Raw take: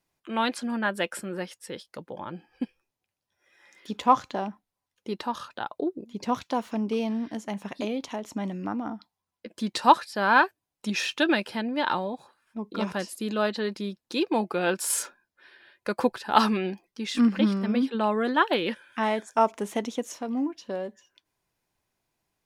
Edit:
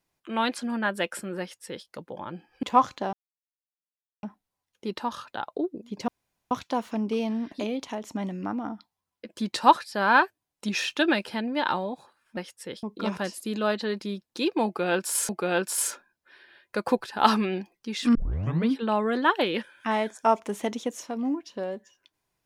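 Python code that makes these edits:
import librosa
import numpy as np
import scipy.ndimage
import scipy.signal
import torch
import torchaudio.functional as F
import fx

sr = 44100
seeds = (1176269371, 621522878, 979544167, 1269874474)

y = fx.edit(x, sr, fx.duplicate(start_s=1.4, length_s=0.46, to_s=12.58),
    fx.cut(start_s=2.63, length_s=1.33),
    fx.insert_silence(at_s=4.46, length_s=1.1),
    fx.insert_room_tone(at_s=6.31, length_s=0.43),
    fx.cut(start_s=7.32, length_s=0.41),
    fx.repeat(start_s=14.41, length_s=0.63, count=2),
    fx.tape_start(start_s=17.27, length_s=0.54), tone=tone)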